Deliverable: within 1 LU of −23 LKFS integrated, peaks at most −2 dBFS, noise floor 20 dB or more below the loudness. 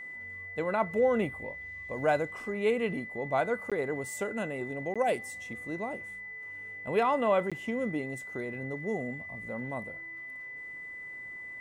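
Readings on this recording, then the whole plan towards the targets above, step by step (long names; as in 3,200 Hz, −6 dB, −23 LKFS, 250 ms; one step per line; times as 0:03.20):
number of dropouts 3; longest dropout 16 ms; interfering tone 2,000 Hz; level of the tone −40 dBFS; integrated loudness −32.5 LKFS; sample peak −15.0 dBFS; target loudness −23.0 LKFS
→ repair the gap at 0:03.70/0:04.94/0:07.50, 16 ms
notch filter 2,000 Hz, Q 30
level +9.5 dB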